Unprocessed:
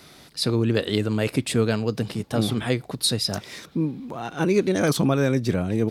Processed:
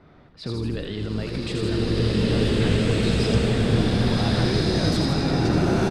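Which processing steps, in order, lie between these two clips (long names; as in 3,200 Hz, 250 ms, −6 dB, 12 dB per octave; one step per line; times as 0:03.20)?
brickwall limiter −20 dBFS, peak gain reduction 11 dB
low-shelf EQ 88 Hz +9.5 dB
echo with shifted repeats 81 ms, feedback 60%, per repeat −46 Hz, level −7 dB
low-pass that shuts in the quiet parts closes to 1,200 Hz, open at −19 dBFS
slow-attack reverb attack 1,770 ms, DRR −9 dB
level −2 dB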